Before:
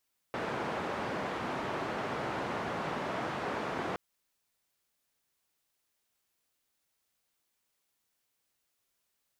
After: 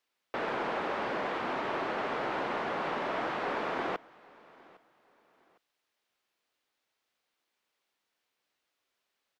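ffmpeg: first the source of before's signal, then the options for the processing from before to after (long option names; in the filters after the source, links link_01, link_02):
-f lavfi -i "anoisesrc=color=white:duration=3.62:sample_rate=44100:seed=1,highpass=frequency=120,lowpass=frequency=1100,volume=-17.6dB"
-filter_complex "[0:a]acrossover=split=240 4800:gain=0.251 1 0.2[link_01][link_02][link_03];[link_01][link_02][link_03]amix=inputs=3:normalize=0,asplit=2[link_04][link_05];[link_05]aeval=exprs='clip(val(0),-1,0.0188)':channel_layout=same,volume=-7dB[link_06];[link_04][link_06]amix=inputs=2:normalize=0,aecho=1:1:808|1616:0.0668|0.0201"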